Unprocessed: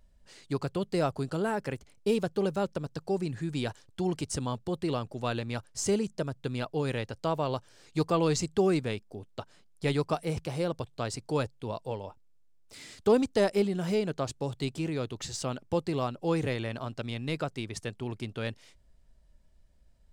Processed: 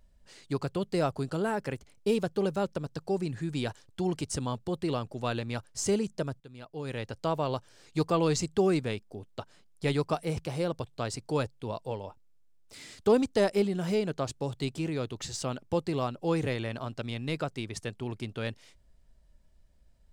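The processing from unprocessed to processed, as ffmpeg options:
-filter_complex "[0:a]asplit=2[a][b];[a]atrim=end=6.4,asetpts=PTS-STARTPTS,afade=t=out:st=6.396:d=0.004:c=hsin:silence=0.149624[c];[b]atrim=start=6.4,asetpts=PTS-STARTPTS,afade=t=in:d=0.71:c=qua:silence=0.149624[d];[c][d]concat=n=2:v=0:a=1"

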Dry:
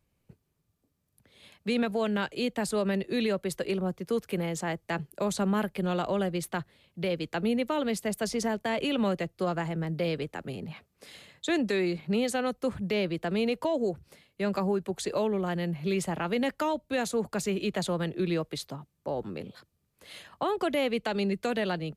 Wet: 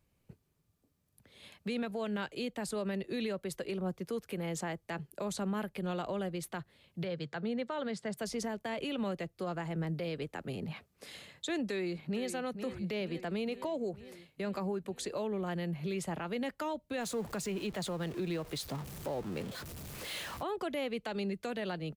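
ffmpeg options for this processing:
-filter_complex "[0:a]asettb=1/sr,asplit=3[a][b][c];[a]atrim=end=7.044[d];[b]atrim=start=7.04:end=8.17,asetpts=PTS-STARTPTS,afade=t=in:d=0.004:c=qsin,afade=t=out:st=1.126:d=0.004:c=qsin,highpass=120,equalizer=f=140:t=q:w=4:g=8,equalizer=f=300:t=q:w=4:g=-7,equalizer=f=1.6k:t=q:w=4:g=4,equalizer=f=2.6k:t=q:w=4:g=-6,equalizer=f=6.3k:t=q:w=4:g=-6,lowpass=f=7.3k:w=0.5412,lowpass=f=7.3k:w=1.3066[e];[c]atrim=start=8.166[f];[d][e]acrossfade=d=0.004:c1=hsin:c2=qsin[g];[g][f]acrossfade=d=0.004:c1=qsin:c2=hsin,asplit=2[h][i];[i]afade=t=in:st=11.62:d=0.01,afade=t=out:st=12.28:d=0.01,aecho=0:1:460|920|1380|1840|2300|2760|3220|3680:0.281838|0.183195|0.119077|0.0773998|0.0503099|0.0327014|0.0212559|0.0138164[j];[h][j]amix=inputs=2:normalize=0,asettb=1/sr,asplit=3[k][l][m];[k]atrim=end=17.004[n];[l]atrim=start=17:end=20.43,asetpts=PTS-STARTPTS,afade=t=in:d=0.004:c=qsin,afade=t=out:st=3.426:d=0.004:c=qsin,aeval=exprs='val(0)+0.5*0.0112*sgn(val(0))':c=same[o];[m]atrim=start=20.426[p];[n][o]acrossfade=d=0.004:c1=hsin:c2=qsin[q];[q][p]acrossfade=d=0.004:c1=qsin:c2=hsin,alimiter=level_in=4dB:limit=-24dB:level=0:latency=1:release=354,volume=-4dB"

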